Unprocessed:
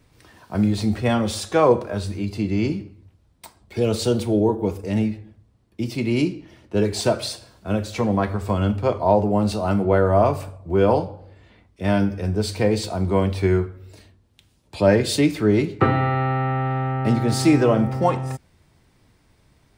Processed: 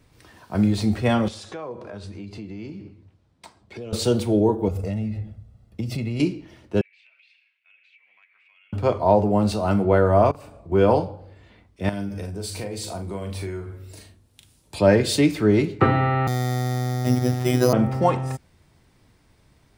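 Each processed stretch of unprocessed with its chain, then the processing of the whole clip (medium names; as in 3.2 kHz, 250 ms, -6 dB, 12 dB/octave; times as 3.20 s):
1.28–3.93 s: high-pass 90 Hz + compression 4:1, threshold -34 dBFS + distance through air 55 m
4.68–6.20 s: bass shelf 380 Hz +8 dB + comb 1.5 ms, depth 58% + compression 10:1, threshold -23 dBFS
6.81–8.73 s: Butterworth band-pass 2.4 kHz, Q 4 + compression, threshold -54 dBFS
10.31–10.72 s: compression 12:1, threshold -37 dBFS + treble shelf 8.2 kHz -5.5 dB + doubling 37 ms -2 dB
11.89–14.79 s: peaking EQ 11 kHz +11 dB 1.4 oct + compression 4:1, threshold -30 dBFS + doubling 40 ms -6.5 dB
16.27–17.73 s: robot voice 125 Hz + careless resampling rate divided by 8×, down filtered, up hold
whole clip: none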